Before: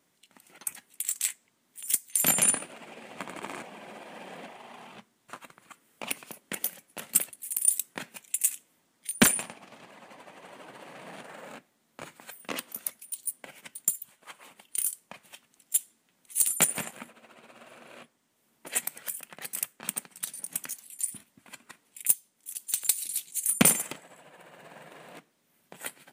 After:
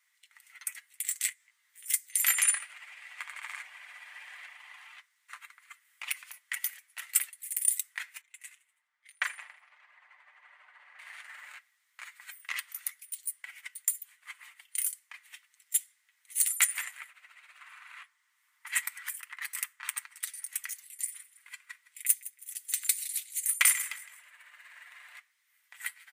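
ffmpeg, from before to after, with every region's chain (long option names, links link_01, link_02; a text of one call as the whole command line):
ffmpeg -i in.wav -filter_complex "[0:a]asettb=1/sr,asplit=3[link_01][link_02][link_03];[link_01]atrim=end=1.294[link_04];[link_02]atrim=start=1.29:end=1.86,asetpts=PTS-STARTPTS,afade=type=in:duration=0.004:curve=qsin,afade=type=out:start_time=0.566:duration=0.004:curve=qsin,acompressor=threshold=-51dB:ratio=3:attack=3.2:release=140:knee=1:detection=peak,asplit=2[link_05][link_06];[link_06]adelay=17,volume=-3.5dB[link_07];[link_05][link_07]amix=inputs=2:normalize=0,atrim=end_sample=25137[link_08];[link_03]atrim=start=1.856[link_09];[link_04][link_08]acrossfade=duration=0.004:curve1=hsin:curve2=qsin[link_10];[link_10][link_09]acrossfade=duration=0.004:curve1=qsin:curve2=hsin,asettb=1/sr,asplit=3[link_11][link_12][link_13];[link_11]atrim=end=8.214[link_14];[link_12]atrim=start=8.21:end=10.99,asetpts=PTS-STARTPTS,afade=type=in:duration=0.004:curve=qsin,afade=type=out:start_time=2.776:duration=0.004:curve=qsin,bandpass=frequency=520:width_type=q:width=0.6,asplit=5[link_15][link_16][link_17][link_18][link_19];[link_16]adelay=81,afreqshift=99,volume=-20dB[link_20];[link_17]adelay=162,afreqshift=198,volume=-25dB[link_21];[link_18]adelay=243,afreqshift=297,volume=-30.1dB[link_22];[link_19]adelay=324,afreqshift=396,volume=-35.1dB[link_23];[link_15][link_20][link_21][link_22][link_23]amix=inputs=5:normalize=0,atrim=end_sample=122598[link_24];[link_13]atrim=start=10.986[link_25];[link_14][link_24]acrossfade=duration=0.004:curve1=hsin:curve2=qsin[link_26];[link_26][link_25]acrossfade=duration=0.004:curve1=qsin:curve2=hsin,asettb=1/sr,asplit=3[link_27][link_28][link_29];[link_27]atrim=end=17.594[link_30];[link_28]atrim=start=17.59:end=20.2,asetpts=PTS-STARTPTS,afade=type=in:duration=0.004:curve=qsin,afade=type=out:start_time=2.606:duration=0.004:curve=qsin,highpass=frequency=1000:width_type=q:width=2.5,highshelf=frequency=9800:gain=-2.5[link_31];[link_29]atrim=start=20.196[link_32];[link_30][link_31]acrossfade=duration=0.004:curve1=hsin:curve2=qsin[link_33];[link_33][link_32]acrossfade=duration=0.004:curve1=qsin:curve2=hsin,asettb=1/sr,asplit=3[link_34][link_35][link_36];[link_34]atrim=end=20.914[link_37];[link_35]atrim=start=20.91:end=24.87,asetpts=PTS-STARTPTS,afade=type=in:duration=0.004:curve=qsin,afade=type=out:start_time=3.956:duration=0.004:curve=qsin,bandreject=frequency=790:width=5.8,aecho=1:1:162|324|486:0.133|0.0467|0.0163,atrim=end_sample=174636[link_38];[link_36]atrim=start=24.866[link_39];[link_37][link_38]acrossfade=duration=0.004:curve1=hsin:curve2=qsin[link_40];[link_40][link_39]acrossfade=duration=0.004:curve1=qsin:curve2=hsin,highpass=frequency=1200:width=0.5412,highpass=frequency=1200:width=1.3066,equalizer=frequency=2000:width=4.2:gain=11,aecho=1:1:6.7:0.42,volume=-3dB" out.wav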